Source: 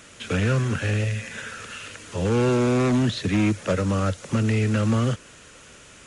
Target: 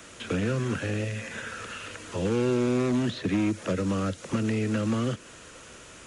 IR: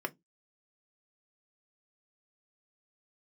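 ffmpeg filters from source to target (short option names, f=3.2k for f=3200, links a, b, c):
-filter_complex "[0:a]acrossover=split=160|400|1700|3500[a][b][c][d][e];[a]acompressor=threshold=-37dB:ratio=4[f];[b]acompressor=threshold=-26dB:ratio=4[g];[c]acompressor=threshold=-39dB:ratio=4[h];[d]acompressor=threshold=-41dB:ratio=4[i];[e]acompressor=threshold=-47dB:ratio=4[j];[f][g][h][i][j]amix=inputs=5:normalize=0,asplit=2[k][l];[1:a]atrim=start_sample=2205,lowpass=2.1k[m];[l][m]afir=irnorm=-1:irlink=0,volume=-14.5dB[n];[k][n]amix=inputs=2:normalize=0"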